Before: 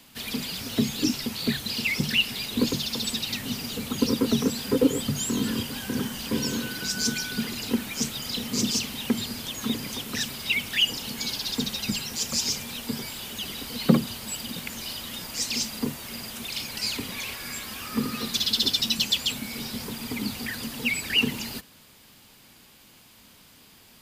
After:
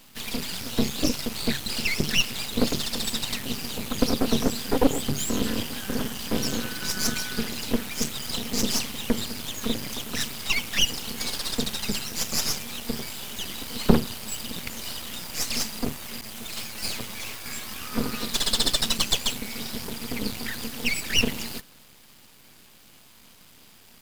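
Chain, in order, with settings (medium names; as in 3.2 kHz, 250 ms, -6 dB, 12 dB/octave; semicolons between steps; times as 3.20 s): 16.21–17.46 s: comb filter that takes the minimum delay 9.2 ms; half-wave rectifier; trim +4.5 dB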